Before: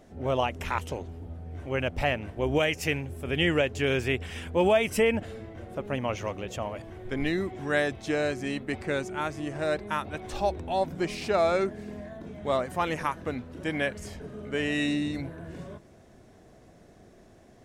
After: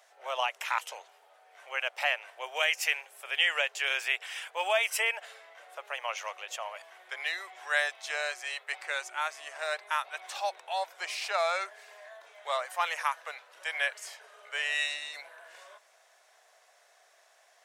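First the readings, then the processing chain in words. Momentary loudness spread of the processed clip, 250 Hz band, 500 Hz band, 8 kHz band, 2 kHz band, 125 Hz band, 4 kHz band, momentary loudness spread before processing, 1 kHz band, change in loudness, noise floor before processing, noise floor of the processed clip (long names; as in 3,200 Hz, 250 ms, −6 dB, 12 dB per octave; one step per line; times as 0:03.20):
17 LU, below −35 dB, −10.0 dB, +3.0 dB, +2.0 dB, below −40 dB, +2.5 dB, 16 LU, −1.5 dB, −2.5 dB, −55 dBFS, −64 dBFS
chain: Bessel high-pass filter 1,100 Hz, order 8
level +3 dB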